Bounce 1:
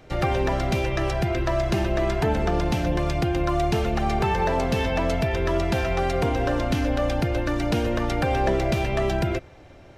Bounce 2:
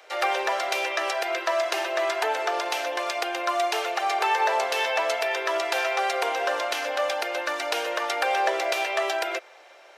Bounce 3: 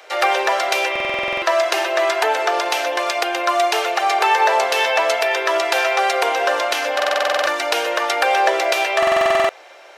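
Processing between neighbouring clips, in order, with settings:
Bessel high-pass 780 Hz, order 8; trim +5 dB
buffer glitch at 0.91/6.95/8.98 s, samples 2048, times 10; trim +7.5 dB

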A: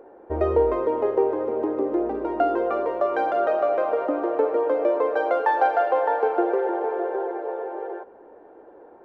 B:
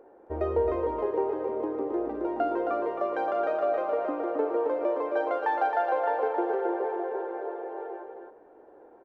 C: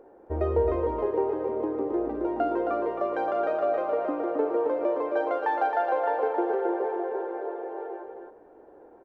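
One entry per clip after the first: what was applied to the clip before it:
delay 268 ms -5 dB; trim -6.5 dB
bass shelf 220 Hz +7.5 dB

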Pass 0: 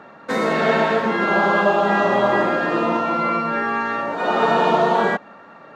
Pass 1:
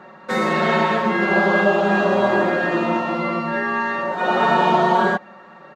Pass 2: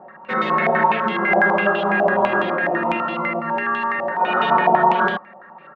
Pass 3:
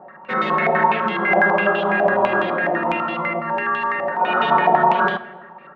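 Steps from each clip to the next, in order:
comb 5.4 ms, depth 85%; trim -2 dB
step-sequenced low-pass 12 Hz 750–3200 Hz; trim -4.5 dB
simulated room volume 1100 m³, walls mixed, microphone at 0.34 m

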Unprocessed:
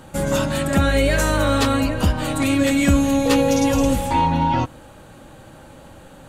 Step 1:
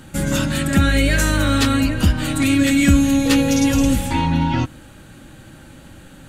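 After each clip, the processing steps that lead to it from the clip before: high-order bell 700 Hz -8.5 dB; trim +3 dB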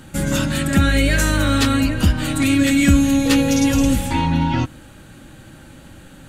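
no audible change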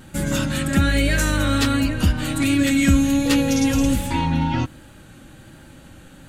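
vibrato 1.3 Hz 28 cents; trim -2.5 dB

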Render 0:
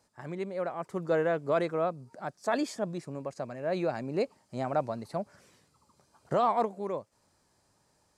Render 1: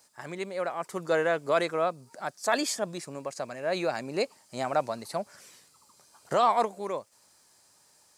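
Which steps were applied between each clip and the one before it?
tilt EQ +3 dB/octave; trim +4 dB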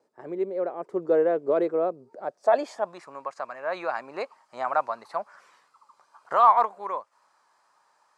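band-pass sweep 400 Hz -> 1.1 kHz, 2.08–3.04 s; wow and flutter 23 cents; trim +9 dB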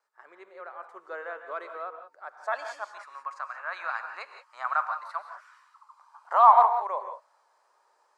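high-pass sweep 1.3 kHz -> 420 Hz, 5.34–7.89 s; gated-style reverb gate 200 ms rising, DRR 7.5 dB; trim -4.5 dB

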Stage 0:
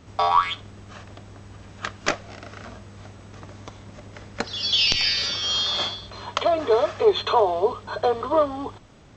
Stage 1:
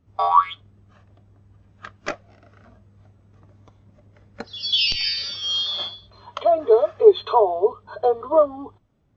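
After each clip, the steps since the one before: spectral contrast expander 1.5:1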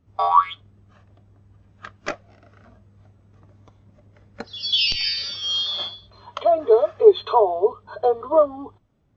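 no audible change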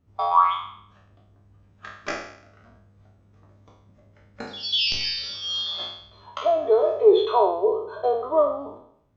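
spectral sustain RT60 0.67 s; trim -4.5 dB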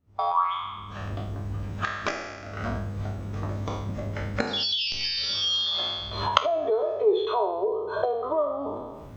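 recorder AGC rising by 50 dB/s; trim -6.5 dB

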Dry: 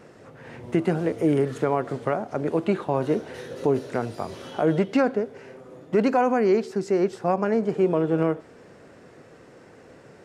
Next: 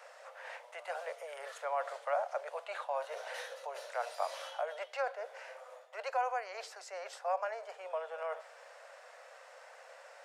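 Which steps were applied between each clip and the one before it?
reverse; compression, threshold -27 dBFS, peak gain reduction 11 dB; reverse; steep high-pass 540 Hz 72 dB/octave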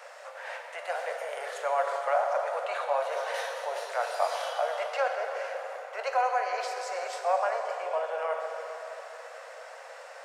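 plate-style reverb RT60 4.5 s, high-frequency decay 0.65×, DRR 2.5 dB; trim +6.5 dB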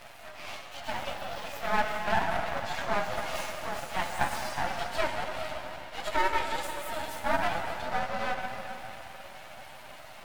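frequency axis rescaled in octaves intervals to 119%; half-wave rectifier; trim +6.5 dB

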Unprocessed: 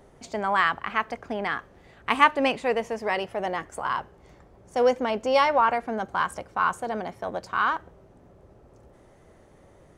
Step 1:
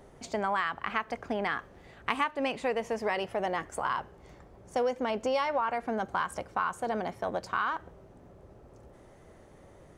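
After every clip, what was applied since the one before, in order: compression 6:1, threshold -26 dBFS, peak gain reduction 14 dB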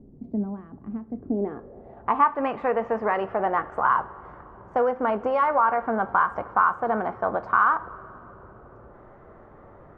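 low-pass sweep 250 Hz -> 1.3 kHz, 1.15–2.35 s; two-slope reverb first 0.25 s, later 3.2 s, from -18 dB, DRR 11 dB; trim +4 dB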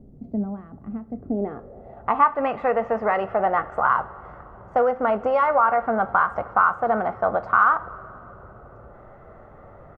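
comb 1.5 ms, depth 36%; trim +2 dB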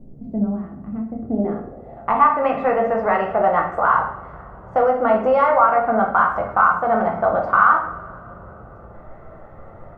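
simulated room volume 100 m³, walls mixed, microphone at 0.74 m; trim +1 dB

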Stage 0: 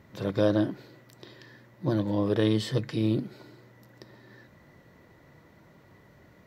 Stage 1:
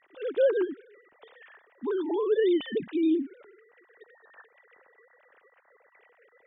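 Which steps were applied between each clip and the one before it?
formants replaced by sine waves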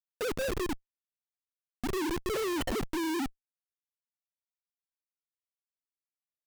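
time-frequency box 0.33–2.30 s, 370–3300 Hz -14 dB; Schmitt trigger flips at -34.5 dBFS; trim +2 dB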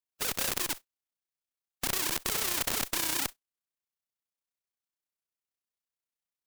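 spectral contrast reduction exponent 0.26; AM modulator 31 Hz, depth 40%; trim +3 dB

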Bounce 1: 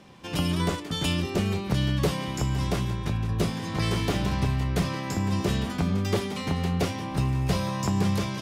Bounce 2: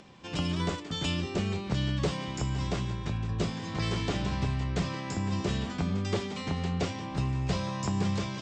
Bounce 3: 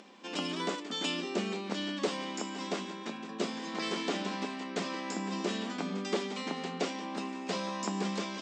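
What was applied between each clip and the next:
elliptic low-pass 7.8 kHz, stop band 40 dB; upward compressor, threshold -46 dBFS; trim -3.5 dB
brick-wall FIR high-pass 190 Hz

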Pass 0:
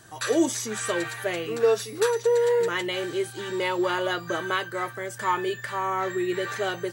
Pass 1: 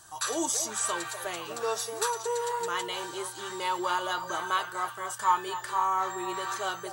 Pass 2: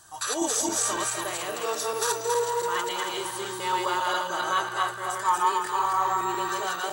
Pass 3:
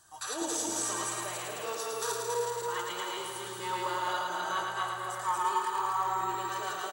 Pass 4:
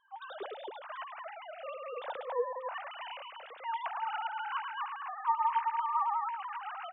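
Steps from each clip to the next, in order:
ten-band graphic EQ 125 Hz -11 dB, 250 Hz -9 dB, 500 Hz -11 dB, 1 kHz +7 dB, 2 kHz -10 dB, 8 kHz +4 dB; repeats whose band climbs or falls 247 ms, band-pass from 600 Hz, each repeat 0.7 oct, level -6.5 dB
backward echo that repeats 138 ms, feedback 56%, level 0 dB
feedback delay 109 ms, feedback 52%, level -4.5 dB; trim -8 dB
formants replaced by sine waves; trim -3 dB

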